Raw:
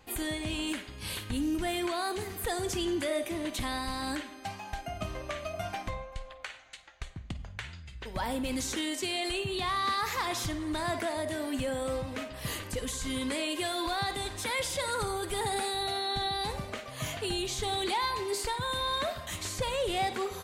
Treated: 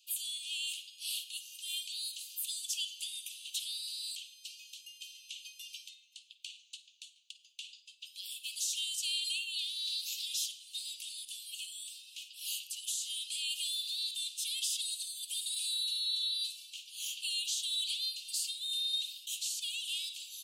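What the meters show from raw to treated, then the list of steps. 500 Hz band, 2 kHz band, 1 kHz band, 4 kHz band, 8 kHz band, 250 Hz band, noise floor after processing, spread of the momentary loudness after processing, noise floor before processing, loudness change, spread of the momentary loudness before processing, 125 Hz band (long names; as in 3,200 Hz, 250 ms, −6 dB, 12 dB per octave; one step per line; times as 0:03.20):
below −40 dB, −11.5 dB, below −40 dB, +2.0 dB, +2.0 dB, below −40 dB, −64 dBFS, 16 LU, −48 dBFS, −2.5 dB, 10 LU, below −40 dB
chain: Butterworth high-pass 2,700 Hz 96 dB per octave
harmonic generator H 3 −42 dB, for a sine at −23 dBFS
level +2 dB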